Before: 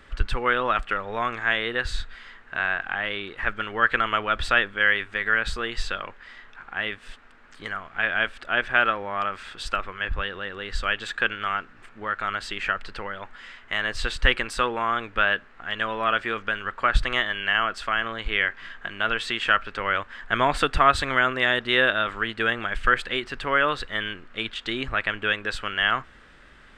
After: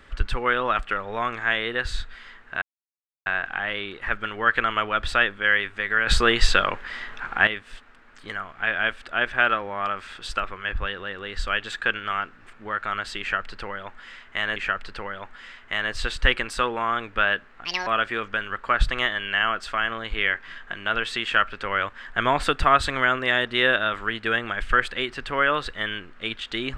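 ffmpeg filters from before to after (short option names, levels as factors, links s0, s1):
-filter_complex "[0:a]asplit=7[s0][s1][s2][s3][s4][s5][s6];[s0]atrim=end=2.62,asetpts=PTS-STARTPTS,afade=t=out:st=2.616:d=0.004:c=hsin,apad=pad_dur=0.64[s7];[s1]atrim=start=2.62:end=5.432,asetpts=PTS-STARTPTS,afade=t=in:d=0.004:c=hsin[s8];[s2]atrim=start=5.428:end=6.832,asetpts=PTS-STARTPTS,volume=3.35[s9];[s3]atrim=start=6.828:end=13.922[s10];[s4]atrim=start=12.558:end=15.654[s11];[s5]atrim=start=15.65:end=16.01,asetpts=PTS-STARTPTS,asetrate=72765,aresample=44100[s12];[s6]atrim=start=16.006[s13];[s7][s8]concat=n=2:v=0:a=1[s14];[s14][s9]acrossfade=d=0.004:c1=hsin:c2=hsin[s15];[s15][s10]acrossfade=d=0.004:c1=hsin:c2=hsin[s16];[s16][s11]acrossfade=d=0.004:c1=hsin:c2=hsin[s17];[s17][s12]acrossfade=d=0.004:c1=hsin:c2=hsin[s18];[s18][s13]acrossfade=d=0.004:c1=hsin:c2=hsin"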